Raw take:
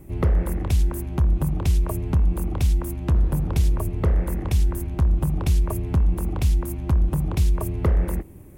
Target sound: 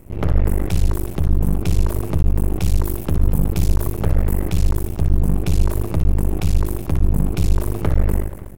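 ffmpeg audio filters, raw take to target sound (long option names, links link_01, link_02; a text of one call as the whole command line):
ffmpeg -i in.wav -filter_complex "[0:a]asettb=1/sr,asplit=3[link_01][link_02][link_03];[link_01]atrim=end=2.634[link_04];[link_02]atrim=start=2.63:end=4.44,asetpts=PTS-STARTPTS,afade=type=in:duration=0.004:curve=qsin,afade=type=out:start_time=1.806:duration=0.004:curve=qsin,highshelf=frequency=11000:gain=8[link_05];[link_03]atrim=start=4.436[link_06];[link_04][link_05]acrossfade=duration=0.004:curve1=hsin:curve2=qsin[link_07];[link_07][link_06]acrossfade=duration=0.004:curve1=qsin:curve2=hsin,aecho=1:1:60|138|239.4|371.2|542.6:0.631|0.398|0.251|0.158|0.1,aeval=exprs='max(val(0),0)':channel_layout=same,volume=4dB" out.wav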